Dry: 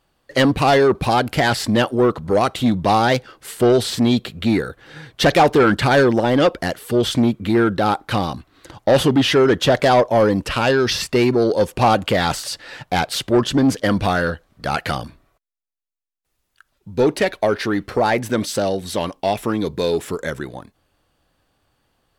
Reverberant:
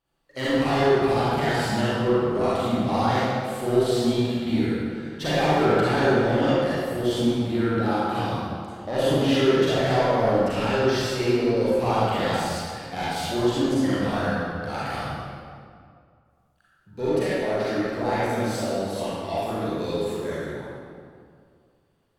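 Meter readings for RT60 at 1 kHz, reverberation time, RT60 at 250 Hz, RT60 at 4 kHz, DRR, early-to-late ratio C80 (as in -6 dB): 2.1 s, 2.2 s, 2.3 s, 1.4 s, -10.5 dB, -3.5 dB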